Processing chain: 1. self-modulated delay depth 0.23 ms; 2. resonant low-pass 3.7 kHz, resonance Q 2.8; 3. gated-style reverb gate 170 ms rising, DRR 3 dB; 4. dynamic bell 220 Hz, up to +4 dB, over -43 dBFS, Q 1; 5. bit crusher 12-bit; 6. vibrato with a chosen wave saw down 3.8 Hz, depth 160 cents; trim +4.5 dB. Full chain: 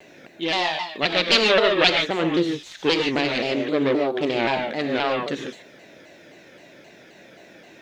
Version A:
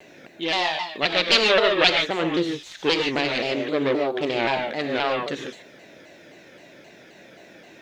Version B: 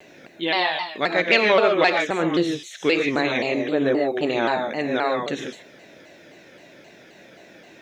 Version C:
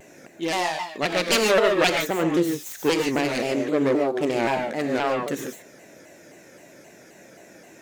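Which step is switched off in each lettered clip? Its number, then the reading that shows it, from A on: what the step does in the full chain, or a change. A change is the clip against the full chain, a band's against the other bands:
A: 4, 250 Hz band -2.5 dB; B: 1, crest factor change -3.0 dB; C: 2, 8 kHz band +8.0 dB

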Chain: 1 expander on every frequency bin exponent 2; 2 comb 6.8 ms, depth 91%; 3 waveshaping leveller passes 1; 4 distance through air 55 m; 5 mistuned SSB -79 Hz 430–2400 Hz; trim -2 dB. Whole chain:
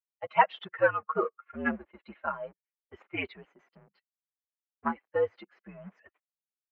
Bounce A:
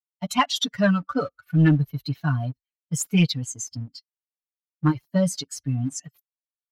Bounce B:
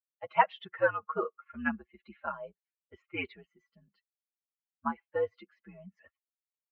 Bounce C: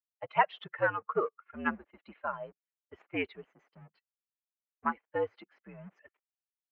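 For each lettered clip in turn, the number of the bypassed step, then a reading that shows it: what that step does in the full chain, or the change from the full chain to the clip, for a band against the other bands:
5, 125 Hz band +26.5 dB; 3, momentary loudness spread change -2 LU; 2, 125 Hz band +2.0 dB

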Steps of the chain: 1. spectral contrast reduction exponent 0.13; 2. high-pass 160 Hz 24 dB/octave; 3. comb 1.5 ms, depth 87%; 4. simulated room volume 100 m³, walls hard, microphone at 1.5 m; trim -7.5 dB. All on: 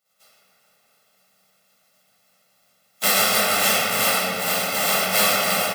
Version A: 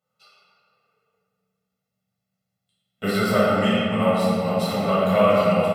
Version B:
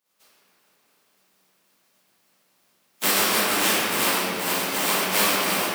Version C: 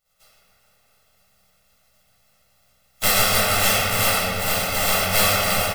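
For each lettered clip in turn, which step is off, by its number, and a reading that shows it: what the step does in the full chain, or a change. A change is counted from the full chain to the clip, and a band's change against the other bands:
1, 8 kHz band -23.5 dB; 3, 250 Hz band +4.5 dB; 2, 125 Hz band +9.0 dB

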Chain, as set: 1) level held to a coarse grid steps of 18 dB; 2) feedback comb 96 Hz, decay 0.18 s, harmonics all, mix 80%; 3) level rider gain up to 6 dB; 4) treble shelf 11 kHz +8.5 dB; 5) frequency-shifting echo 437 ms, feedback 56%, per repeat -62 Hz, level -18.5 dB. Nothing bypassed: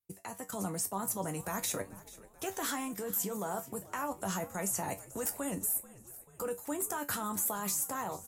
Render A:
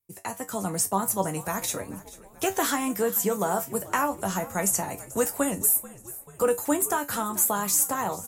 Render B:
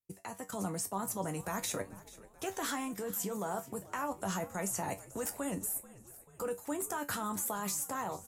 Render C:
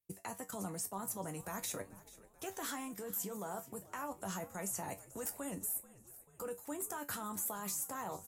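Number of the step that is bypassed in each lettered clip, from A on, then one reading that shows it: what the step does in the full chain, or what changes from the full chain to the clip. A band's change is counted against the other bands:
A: 1, 125 Hz band -2.0 dB; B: 4, 8 kHz band -3.0 dB; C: 3, momentary loudness spread change -1 LU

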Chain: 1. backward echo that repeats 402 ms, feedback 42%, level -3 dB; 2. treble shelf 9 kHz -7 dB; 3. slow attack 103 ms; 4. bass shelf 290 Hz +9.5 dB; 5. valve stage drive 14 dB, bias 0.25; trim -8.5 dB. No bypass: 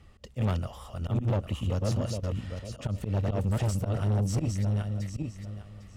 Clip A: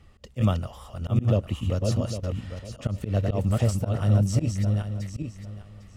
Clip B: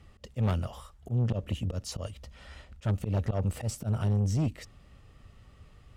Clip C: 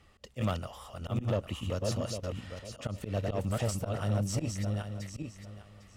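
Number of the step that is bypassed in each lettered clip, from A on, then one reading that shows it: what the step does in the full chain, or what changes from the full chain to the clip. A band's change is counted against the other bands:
5, crest factor change +6.0 dB; 1, 500 Hz band -2.0 dB; 4, 125 Hz band -6.0 dB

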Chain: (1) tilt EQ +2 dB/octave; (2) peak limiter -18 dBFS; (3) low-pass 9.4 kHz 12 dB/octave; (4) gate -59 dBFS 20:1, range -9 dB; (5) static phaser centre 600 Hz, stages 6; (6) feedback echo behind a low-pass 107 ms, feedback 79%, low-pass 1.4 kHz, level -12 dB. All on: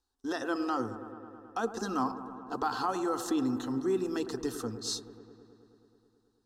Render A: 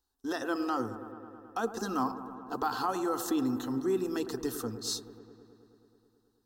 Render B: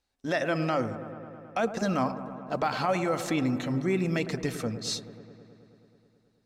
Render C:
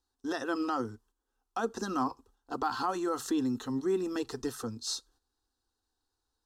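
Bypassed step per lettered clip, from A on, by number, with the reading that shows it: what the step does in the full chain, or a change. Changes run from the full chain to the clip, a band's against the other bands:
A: 3, momentary loudness spread change -1 LU; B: 5, 125 Hz band +9.5 dB; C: 6, echo-to-direct -11.0 dB to none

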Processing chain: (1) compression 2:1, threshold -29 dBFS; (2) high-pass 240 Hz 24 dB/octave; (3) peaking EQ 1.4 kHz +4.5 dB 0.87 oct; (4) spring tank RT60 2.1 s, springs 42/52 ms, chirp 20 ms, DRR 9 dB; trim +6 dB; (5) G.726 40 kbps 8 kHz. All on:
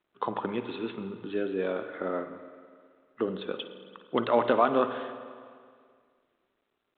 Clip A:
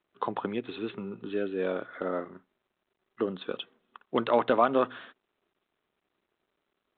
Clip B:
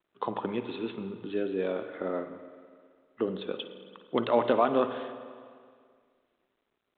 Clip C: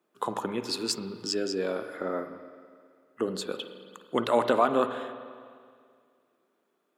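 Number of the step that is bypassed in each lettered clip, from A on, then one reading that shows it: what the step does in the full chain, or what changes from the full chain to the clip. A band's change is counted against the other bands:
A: 4, momentary loudness spread change -5 LU; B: 3, 2 kHz band -3.0 dB; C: 5, 4 kHz band +8.0 dB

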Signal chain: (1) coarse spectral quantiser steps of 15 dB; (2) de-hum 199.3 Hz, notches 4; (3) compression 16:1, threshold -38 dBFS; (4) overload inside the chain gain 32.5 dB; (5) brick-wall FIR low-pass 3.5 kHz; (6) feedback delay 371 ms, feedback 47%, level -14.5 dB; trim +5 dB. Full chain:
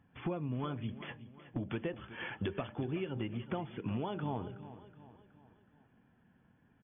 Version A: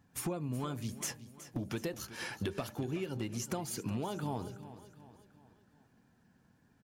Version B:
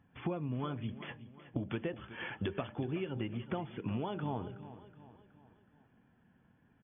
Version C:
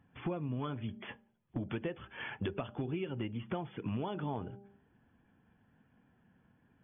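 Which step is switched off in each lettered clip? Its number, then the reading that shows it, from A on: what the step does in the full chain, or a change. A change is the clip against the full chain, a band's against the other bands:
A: 5, momentary loudness spread change -3 LU; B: 4, distortion -23 dB; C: 6, echo-to-direct -13.5 dB to none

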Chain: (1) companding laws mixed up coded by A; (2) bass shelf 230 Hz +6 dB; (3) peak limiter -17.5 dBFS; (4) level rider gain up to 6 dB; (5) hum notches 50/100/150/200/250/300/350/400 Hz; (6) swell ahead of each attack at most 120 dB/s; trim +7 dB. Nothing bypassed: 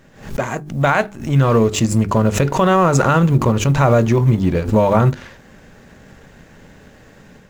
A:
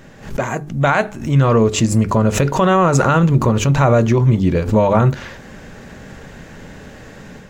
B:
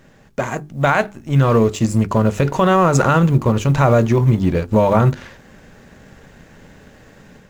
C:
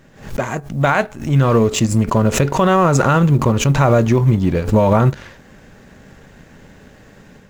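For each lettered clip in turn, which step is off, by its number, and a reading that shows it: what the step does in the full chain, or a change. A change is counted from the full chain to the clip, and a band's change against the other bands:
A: 1, distortion -24 dB; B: 6, 8 kHz band -3.5 dB; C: 5, crest factor change -3.0 dB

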